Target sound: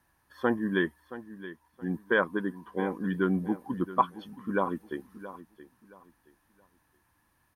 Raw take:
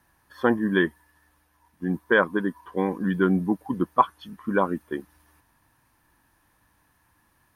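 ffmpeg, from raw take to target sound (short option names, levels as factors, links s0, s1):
-af "aecho=1:1:673|1346|2019:0.178|0.048|0.013,volume=0.531"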